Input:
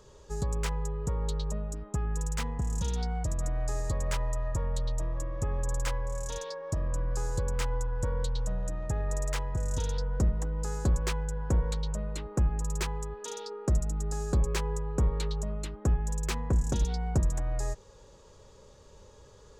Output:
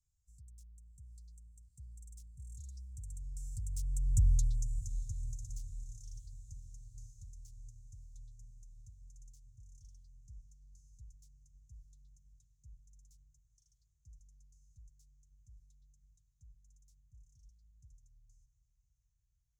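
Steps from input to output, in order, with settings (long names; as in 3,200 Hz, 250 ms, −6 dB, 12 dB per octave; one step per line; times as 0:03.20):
source passing by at 0:04.25, 29 m/s, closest 3.8 metres
Chebyshev band-stop filter 110–6,100 Hz, order 3
feedback delay with all-pass diffusion 610 ms, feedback 63%, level −15 dB
level +6.5 dB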